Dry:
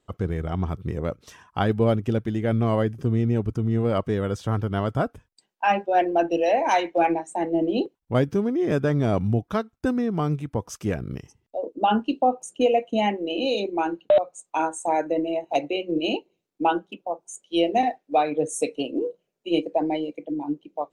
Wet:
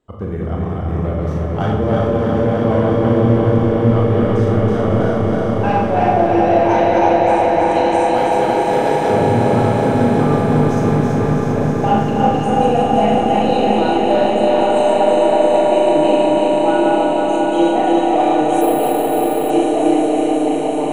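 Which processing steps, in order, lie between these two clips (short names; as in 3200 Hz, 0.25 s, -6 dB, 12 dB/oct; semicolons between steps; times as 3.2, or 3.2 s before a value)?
regenerating reverse delay 0.163 s, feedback 84%, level -2 dB; high shelf 2200 Hz -9.5 dB; de-hum 56.23 Hz, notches 2; in parallel at -4 dB: soft clip -17 dBFS, distortion -12 dB; 7.71–9.1 on the sum: RIAA curve recording; on a send: swelling echo 0.183 s, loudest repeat 5, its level -9 dB; on the sum: Schroeder reverb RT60 0.68 s, combs from 26 ms, DRR -0.5 dB; 18.61–19.5 careless resampling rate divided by 4×, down filtered, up hold; gain -3 dB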